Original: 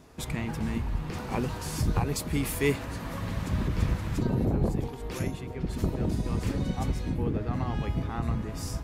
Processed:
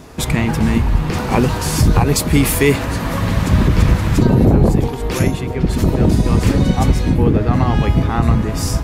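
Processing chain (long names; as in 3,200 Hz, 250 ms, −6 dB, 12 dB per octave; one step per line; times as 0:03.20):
boost into a limiter +16.5 dB
level −1 dB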